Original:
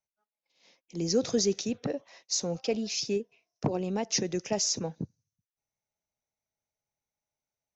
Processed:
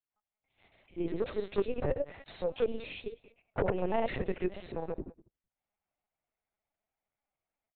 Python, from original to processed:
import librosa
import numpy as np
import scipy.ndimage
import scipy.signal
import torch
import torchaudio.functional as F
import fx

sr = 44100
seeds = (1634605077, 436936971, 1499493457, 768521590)

p1 = fx.rider(x, sr, range_db=3, speed_s=0.5)
p2 = x + F.gain(torch.from_numpy(p1), 2.0).numpy()
p3 = 10.0 ** (-14.0 / 20.0) * (np.abs((p2 / 10.0 ** (-14.0 / 20.0) + 3.0) % 4.0 - 2.0) - 1.0)
p4 = fx.granulator(p3, sr, seeds[0], grain_ms=100.0, per_s=20.0, spray_ms=100.0, spread_st=0)
p5 = fx.bandpass_edges(p4, sr, low_hz=350.0, high_hz=3100.0)
p6 = fx.air_absorb(p5, sr, metres=170.0)
p7 = p6 + 10.0 ** (-21.0 / 20.0) * np.pad(p6, (int(192 * sr / 1000.0), 0))[:len(p6)]
p8 = fx.lpc_vocoder(p7, sr, seeds[1], excitation='pitch_kept', order=10)
y = F.gain(torch.from_numpy(p8), -2.0).numpy()